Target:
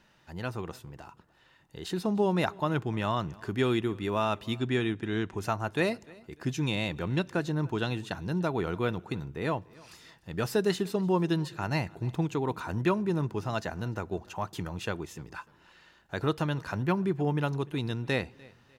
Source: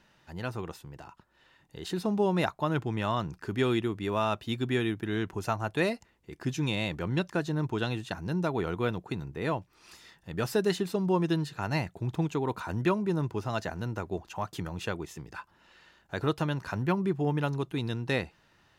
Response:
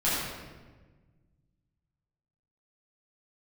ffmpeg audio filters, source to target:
-filter_complex "[0:a]asettb=1/sr,asplit=3[link_01][link_02][link_03];[link_01]atrim=end=4.584[link_04];[link_02]atrim=start=4.58:end=5.37,asetpts=PTS-STARTPTS,afade=type=in:duration=0.004:curve=qsin,afade=type=out:start_time=0.786:duration=0.004:curve=qsin,lowpass=frequency=9100:width=0.5412,lowpass=frequency=9100:width=1.3066[link_05];[link_03]atrim=start=5.366[link_06];[link_04][link_05]acrossfade=duration=0.004:curve1=hsin:curve2=qsin[link_07];[link_07][link_06]acrossfade=duration=0.004:curve1=qsin:curve2=hsin,aecho=1:1:298|596:0.0631|0.0202,asplit=2[link_08][link_09];[1:a]atrim=start_sample=2205,asetrate=70560,aresample=44100[link_10];[link_09][link_10]afir=irnorm=-1:irlink=0,volume=-34dB[link_11];[link_08][link_11]amix=inputs=2:normalize=0"

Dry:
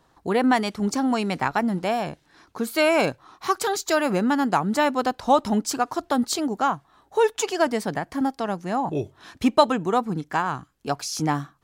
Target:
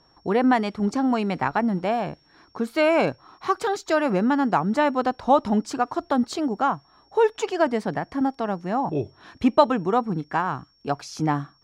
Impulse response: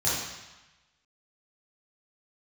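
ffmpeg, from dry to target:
-af "aeval=exprs='val(0)+0.00251*sin(2*PI*5500*n/s)':channel_layout=same,aemphasis=mode=reproduction:type=75fm"

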